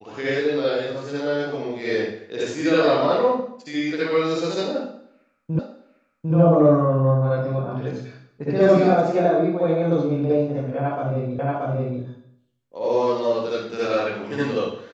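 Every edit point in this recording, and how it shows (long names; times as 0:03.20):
0:05.59: the same again, the last 0.75 s
0:11.39: the same again, the last 0.63 s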